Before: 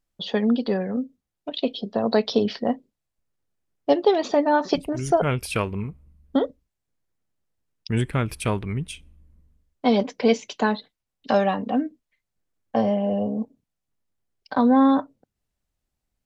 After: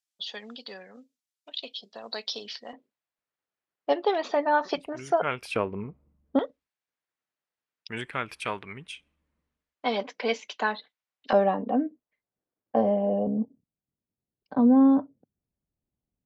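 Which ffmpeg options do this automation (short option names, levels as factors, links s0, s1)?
-af "asetnsamples=n=441:p=0,asendcmd='2.73 bandpass f 1500;5.56 bandpass f 550;6.39 bandpass f 1800;11.33 bandpass f 490;13.27 bandpass f 200',bandpass=f=6400:t=q:w=0.66:csg=0"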